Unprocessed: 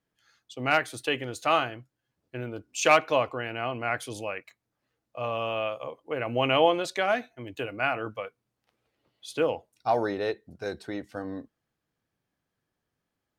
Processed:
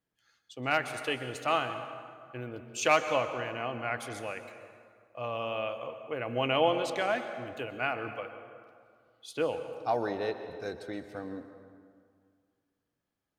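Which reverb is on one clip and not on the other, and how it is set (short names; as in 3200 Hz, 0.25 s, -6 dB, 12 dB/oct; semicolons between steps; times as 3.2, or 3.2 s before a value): plate-style reverb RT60 2.1 s, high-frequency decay 0.6×, pre-delay 0.11 s, DRR 9 dB; gain -4.5 dB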